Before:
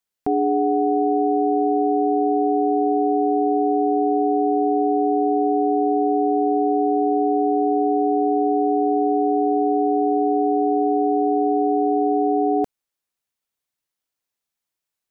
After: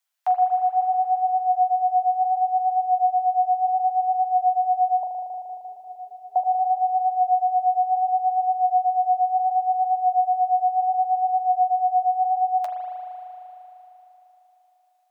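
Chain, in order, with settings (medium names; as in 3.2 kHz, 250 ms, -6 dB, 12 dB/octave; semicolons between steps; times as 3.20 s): steep high-pass 620 Hz 96 dB/octave; flange 0.7 Hz, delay 7.3 ms, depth 8.3 ms, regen +37%; 5.03–6.36 s: Butterworth band-stop 800 Hz, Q 2; spring tank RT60 3.7 s, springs 38 ms, chirp 60 ms, DRR 1 dB; trim +8 dB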